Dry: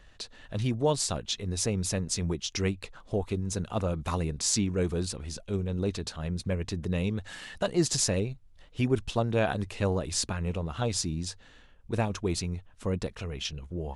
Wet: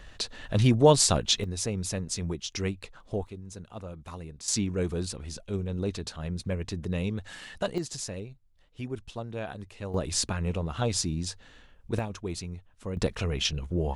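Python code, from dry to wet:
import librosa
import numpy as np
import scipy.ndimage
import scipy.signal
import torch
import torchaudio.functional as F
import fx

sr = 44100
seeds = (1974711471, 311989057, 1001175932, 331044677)

y = fx.gain(x, sr, db=fx.steps((0.0, 7.5), (1.44, -2.0), (3.27, -11.0), (4.48, -1.0), (7.78, -9.5), (9.94, 1.5), (11.99, -5.0), (12.97, 6.5)))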